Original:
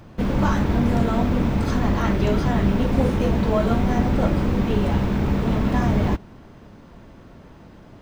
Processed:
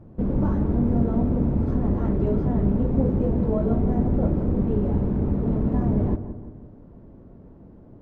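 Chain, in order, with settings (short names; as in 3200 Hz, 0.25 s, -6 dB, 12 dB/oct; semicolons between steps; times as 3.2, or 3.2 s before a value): EQ curve 420 Hz 0 dB, 3000 Hz -24 dB, 5600 Hz -27 dB; on a send: darkening echo 0.172 s, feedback 51%, low-pass 1800 Hz, level -11 dB; on the sum: gain -1.5 dB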